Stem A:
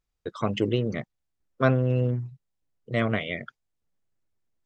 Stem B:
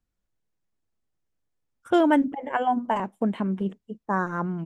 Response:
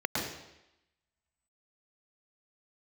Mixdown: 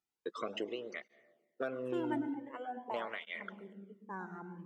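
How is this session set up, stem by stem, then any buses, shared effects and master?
-3.5 dB, 0.00 s, send -22 dB, de-esser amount 90%; HPF 300 Hz 12 dB/oct; compressor 6:1, threshold -30 dBFS, peak gain reduction 12 dB
-17.5 dB, 0.00 s, send -15.5 dB, dry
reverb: on, RT60 0.90 s, pre-delay 0.104 s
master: tape flanging out of phase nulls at 0.46 Hz, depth 1.9 ms

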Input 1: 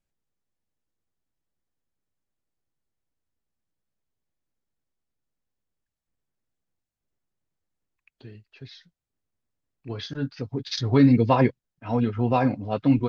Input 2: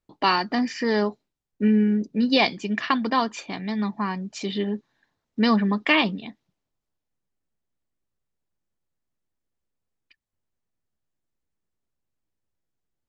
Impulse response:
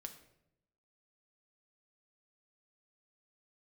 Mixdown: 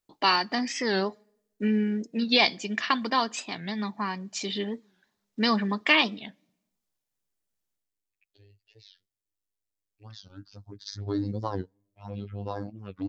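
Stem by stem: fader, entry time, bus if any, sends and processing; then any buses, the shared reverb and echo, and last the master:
-9.0 dB, 0.15 s, send -23 dB, robotiser 101 Hz; envelope phaser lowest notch 170 Hz, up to 2400 Hz, full sweep at -21 dBFS
7.73 s -3.5 dB -> 7.94 s -13.5 dB, 0.00 s, send -14.5 dB, low shelf 260 Hz -6.5 dB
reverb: on, RT60 0.80 s, pre-delay 5 ms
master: high shelf 4000 Hz +9.5 dB; record warp 45 rpm, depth 160 cents

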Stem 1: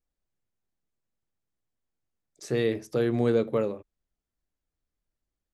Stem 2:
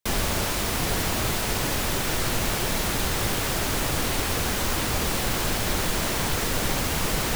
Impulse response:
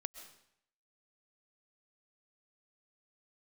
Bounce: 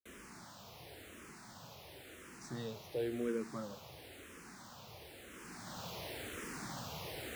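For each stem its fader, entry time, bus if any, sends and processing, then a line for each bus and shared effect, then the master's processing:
-10.5 dB, 0.00 s, no send, dry
5.26 s -23 dB -> 5.88 s -14.5 dB, 0.00 s, no send, high shelf 6200 Hz -5.5 dB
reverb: off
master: HPF 100 Hz 12 dB/oct; endless phaser -0.96 Hz

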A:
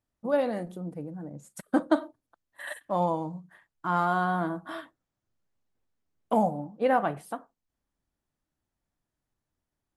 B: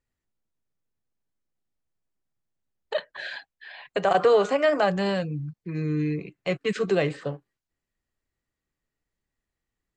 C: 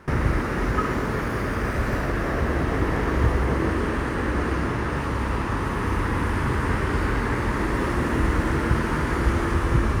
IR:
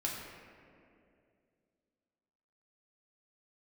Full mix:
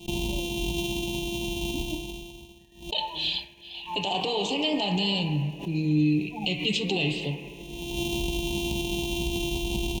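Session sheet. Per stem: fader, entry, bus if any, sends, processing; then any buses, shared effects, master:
-6.5 dB, 0.00 s, no bus, no send, resonator 52 Hz, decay 0.37 s, harmonics all, mix 70%; loudest bins only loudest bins 4
+2.5 dB, 0.00 s, bus A, send -13.5 dB, bell 3300 Hz +7 dB 1.6 oct
-6.0 dB, 0.00 s, bus A, no send, sample sorter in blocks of 128 samples; comb 5.5 ms, depth 61%; auto duck -23 dB, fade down 1.20 s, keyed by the second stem
bus A: 0.0 dB, Butterworth band-stop 1500 Hz, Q 0.63; limiter -20 dBFS, peak gain reduction 11.5 dB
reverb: on, RT60 2.5 s, pre-delay 3 ms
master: expander -37 dBFS; EQ curve 320 Hz 0 dB, 600 Hz -13 dB, 920 Hz +9 dB, 1400 Hz -29 dB, 2700 Hz +12 dB, 4900 Hz 0 dB; backwards sustainer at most 130 dB/s

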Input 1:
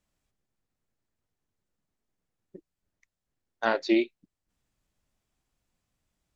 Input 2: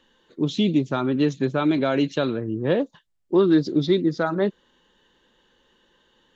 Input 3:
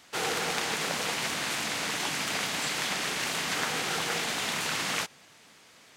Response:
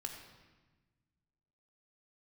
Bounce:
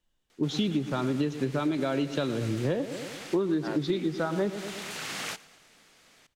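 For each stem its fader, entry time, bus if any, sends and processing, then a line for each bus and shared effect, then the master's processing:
-3.0 dB, 0.00 s, no send, no echo send, dry
+1.0 dB, 0.00 s, no send, echo send -14.5 dB, low shelf 71 Hz +11.5 dB; three-band expander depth 70%
-3.5 dB, 0.30 s, no send, echo send -22 dB, bell 980 Hz -4 dB 0.24 oct; soft clip -21.5 dBFS, distortion -21 dB; auto duck -8 dB, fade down 0.35 s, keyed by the second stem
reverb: off
echo: feedback echo 0.112 s, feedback 56%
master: compressor 12:1, threshold -24 dBFS, peak gain reduction 16 dB

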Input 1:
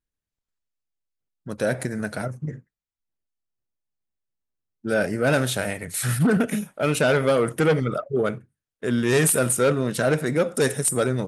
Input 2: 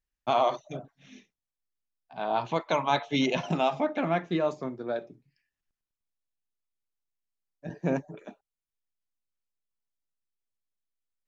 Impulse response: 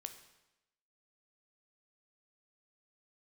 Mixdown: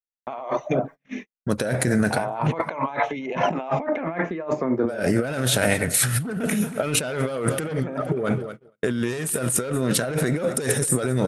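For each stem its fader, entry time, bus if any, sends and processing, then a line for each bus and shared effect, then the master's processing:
+3.0 dB, 0.00 s, no send, echo send -21 dB, dry
+2.5 dB, 0.00 s, send -22 dB, no echo send, ten-band EQ 125 Hz +4 dB, 250 Hz +7 dB, 500 Hz +9 dB, 1000 Hz +7 dB, 2000 Hz +12 dB, 4000 Hz -8 dB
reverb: on, RT60 0.95 s, pre-delay 12 ms
echo: feedback echo 0.233 s, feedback 48%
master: gate -41 dBFS, range -42 dB; negative-ratio compressor -25 dBFS, ratio -1

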